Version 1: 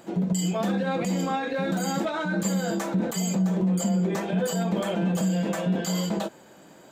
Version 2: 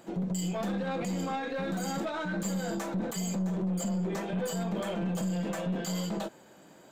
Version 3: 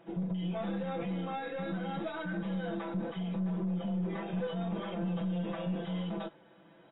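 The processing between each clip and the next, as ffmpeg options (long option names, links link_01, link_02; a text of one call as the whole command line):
ffmpeg -i in.wav -af "aeval=exprs='(tanh(12.6*val(0)+0.2)-tanh(0.2))/12.6':channel_layout=same,volume=-4dB" out.wav
ffmpeg -i in.wav -af "aecho=1:1:6:0.66,volume=-6dB" -ar 16000 -c:a aac -b:a 16k out.aac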